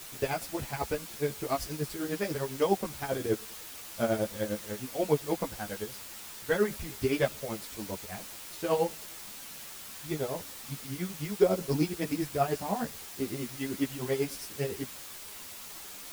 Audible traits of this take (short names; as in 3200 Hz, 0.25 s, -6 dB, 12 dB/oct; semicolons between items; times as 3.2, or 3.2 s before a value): tremolo triangle 10 Hz, depth 85%; a quantiser's noise floor 8-bit, dither triangular; a shimmering, thickened sound